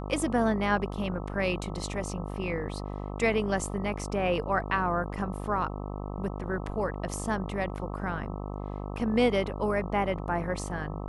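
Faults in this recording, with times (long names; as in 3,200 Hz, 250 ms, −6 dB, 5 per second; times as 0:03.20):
mains buzz 50 Hz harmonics 26 −36 dBFS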